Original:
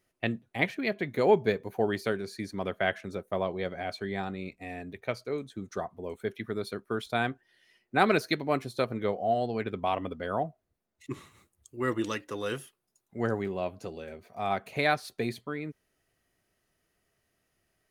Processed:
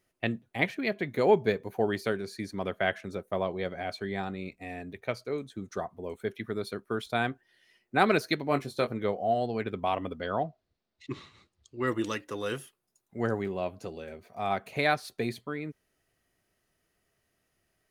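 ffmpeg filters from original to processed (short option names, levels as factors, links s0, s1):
-filter_complex "[0:a]asettb=1/sr,asplit=3[s0][s1][s2];[s0]atrim=end=8.494[s3];[s1]atrim=start=8.49:end=8.93,asetpts=PTS-STARTPTS,afade=t=in:d=0.004:c=qsin,afade=t=out:st=0.436:d=0.004:c=qsin,asplit=2[s4][s5];[s5]adelay=21,volume=0.376[s6];[s4][s6]amix=inputs=2:normalize=0,atrim=end_sample=19404[s7];[s2]atrim=start=8.926[s8];[s3][s7]acrossfade=d=0.004:c1=hsin:c2=qsin[s9];[s9][s8]acrossfade=d=0.004:c1=qsin:c2=hsin,asettb=1/sr,asplit=3[s10][s11][s12];[s10]atrim=end=10.214[s13];[s11]atrim=start=10.21:end=11.87,asetpts=PTS-STARTPTS,afade=t=in:d=0.004:c=qsin,afade=t=out:st=1.656:d=0.004:c=qsin,lowpass=f=4400:t=q:w=2.3[s14];[s12]atrim=start=11.866[s15];[s13][s14]acrossfade=d=0.004:c1=hsin:c2=qsin[s16];[s16][s15]acrossfade=d=0.004:c1=qsin:c2=hsin"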